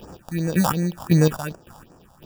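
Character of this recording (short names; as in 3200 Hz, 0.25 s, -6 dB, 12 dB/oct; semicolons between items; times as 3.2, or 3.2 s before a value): aliases and images of a low sample rate 2100 Hz, jitter 0%; phasing stages 4, 2.7 Hz, lowest notch 350–3600 Hz; chopped level 1.8 Hz, depth 65%, duty 30%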